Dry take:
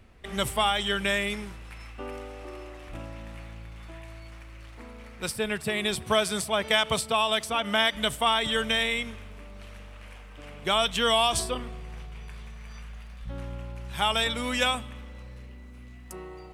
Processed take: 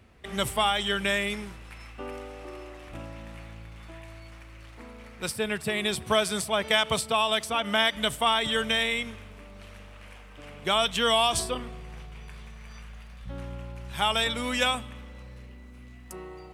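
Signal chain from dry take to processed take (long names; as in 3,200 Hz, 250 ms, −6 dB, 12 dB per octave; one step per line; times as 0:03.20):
high-pass filter 53 Hz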